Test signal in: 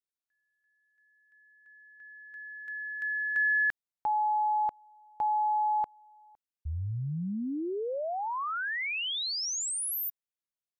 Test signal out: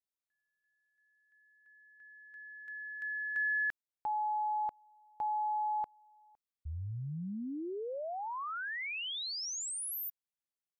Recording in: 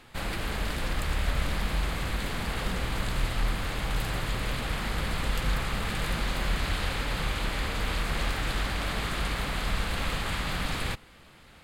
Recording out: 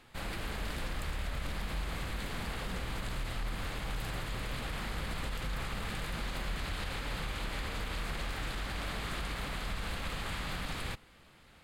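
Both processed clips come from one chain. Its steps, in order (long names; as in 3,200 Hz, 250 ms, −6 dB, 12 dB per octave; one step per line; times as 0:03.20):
brickwall limiter −21.5 dBFS
level −6 dB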